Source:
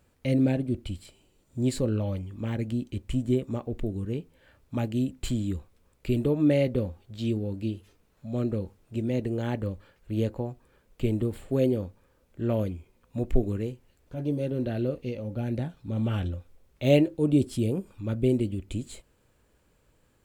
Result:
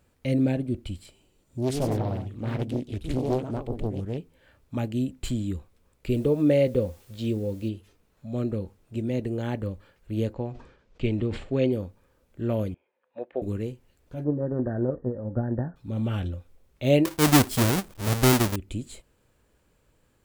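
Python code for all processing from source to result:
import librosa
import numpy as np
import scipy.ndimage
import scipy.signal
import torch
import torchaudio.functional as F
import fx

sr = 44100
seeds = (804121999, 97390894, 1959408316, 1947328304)

y = fx.chain(x, sr, fx.echo_pitch(ms=114, semitones=2, count=2, db_per_echo=-6.0),
    fx.doppler_dist(depth_ms=0.87), at=(1.58, 4.18))
y = fx.chain(y, sr, fx.peak_eq(hz=500.0, db=8.0, octaves=0.33),
    fx.quant_dither(seeds[0], bits=10, dither='triangular'), at=(6.1, 7.69))
y = fx.chain(y, sr, fx.lowpass(hz=6000.0, slope=24),
    fx.dynamic_eq(hz=2400.0, q=1.3, threshold_db=-53.0, ratio=4.0, max_db=7),
    fx.sustainer(db_per_s=95.0), at=(10.33, 11.72))
y = fx.chain(y, sr, fx.cabinet(low_hz=480.0, low_slope=12, high_hz=3400.0, hz=(540.0, 840.0, 1700.0), db=(10, 6, 9)),
    fx.upward_expand(threshold_db=-45.0, expansion=1.5), at=(12.74, 13.42))
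y = fx.chain(y, sr, fx.transient(attack_db=9, sustain_db=2),
    fx.brickwall_lowpass(high_hz=1900.0), at=(14.24, 15.76))
y = fx.chain(y, sr, fx.halfwave_hold(),
    fx.high_shelf(hz=5600.0, db=9.0), at=(17.05, 18.56))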